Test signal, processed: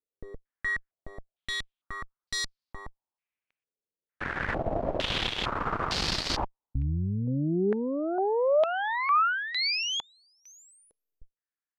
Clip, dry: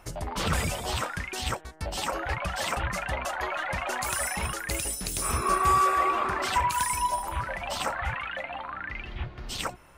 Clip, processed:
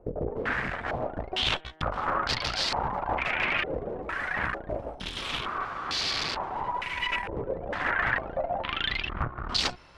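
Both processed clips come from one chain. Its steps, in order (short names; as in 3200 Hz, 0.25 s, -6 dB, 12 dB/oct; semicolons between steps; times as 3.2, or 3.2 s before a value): wrapped overs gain 23 dB; vocal rider within 4 dB 0.5 s; added harmonics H 4 -7 dB, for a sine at -19 dBFS; stepped low-pass 2.2 Hz 470–4600 Hz; gain -4 dB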